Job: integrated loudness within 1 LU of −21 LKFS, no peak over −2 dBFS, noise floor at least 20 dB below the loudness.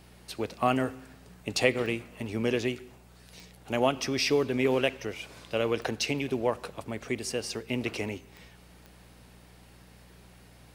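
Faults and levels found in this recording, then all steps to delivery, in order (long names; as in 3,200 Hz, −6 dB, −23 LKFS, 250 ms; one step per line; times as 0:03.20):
number of clicks 5; mains hum 60 Hz; hum harmonics up to 180 Hz; level of the hum −55 dBFS; integrated loudness −30.0 LKFS; sample peak −8.5 dBFS; target loudness −21.0 LKFS
→ click removal
hum removal 60 Hz, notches 3
level +9 dB
brickwall limiter −2 dBFS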